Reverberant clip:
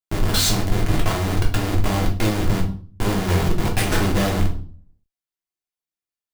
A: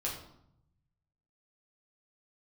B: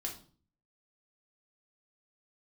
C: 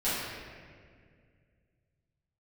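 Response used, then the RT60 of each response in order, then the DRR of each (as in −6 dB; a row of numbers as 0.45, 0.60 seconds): B; 0.75, 0.45, 2.0 seconds; −4.5, −1.0, −13.5 decibels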